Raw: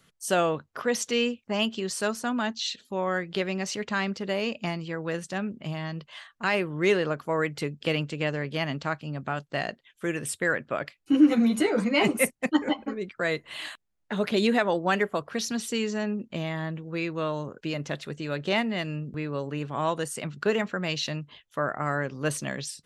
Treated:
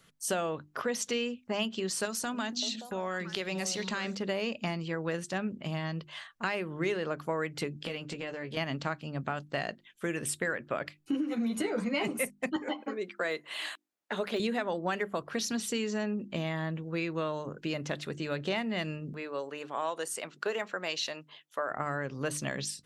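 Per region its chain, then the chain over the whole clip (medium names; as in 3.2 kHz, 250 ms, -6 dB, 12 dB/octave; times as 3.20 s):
2.05–4.15 s: treble shelf 3.1 kHz +10.5 dB + compression 3:1, threshold -30 dBFS + repeats whose band climbs or falls 287 ms, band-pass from 220 Hz, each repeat 1.4 oct, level -4.5 dB
7.74–8.57 s: compression 4:1, threshold -34 dBFS + doubling 17 ms -7 dB
12.56–14.40 s: high-pass 310 Hz + de-esser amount 95%
19.13–21.71 s: high-pass 460 Hz + peaking EQ 2.2 kHz -2.5 dB 2.7 oct
whole clip: compression 6:1, threshold -28 dBFS; hum notches 50/100/150/200/250/300/350 Hz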